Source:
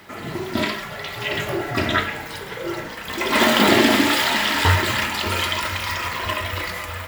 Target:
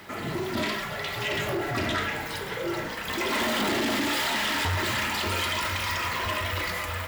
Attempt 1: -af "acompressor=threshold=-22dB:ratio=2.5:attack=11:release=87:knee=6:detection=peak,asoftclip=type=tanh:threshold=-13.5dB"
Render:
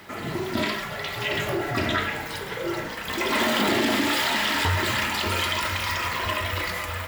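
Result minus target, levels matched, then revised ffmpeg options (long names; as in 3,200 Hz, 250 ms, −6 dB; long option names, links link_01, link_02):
soft clipping: distortion −10 dB
-af "acompressor=threshold=-22dB:ratio=2.5:attack=11:release=87:knee=6:detection=peak,asoftclip=type=tanh:threshold=-22.5dB"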